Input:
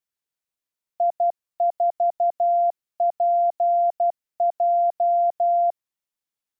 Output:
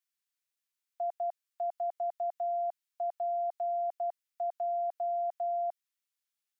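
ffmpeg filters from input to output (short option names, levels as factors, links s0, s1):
-af "highpass=1400"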